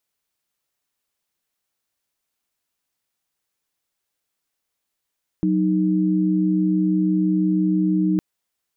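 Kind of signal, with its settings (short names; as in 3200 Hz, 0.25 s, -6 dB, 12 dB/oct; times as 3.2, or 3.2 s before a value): chord F#3/D#4 sine, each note -19 dBFS 2.76 s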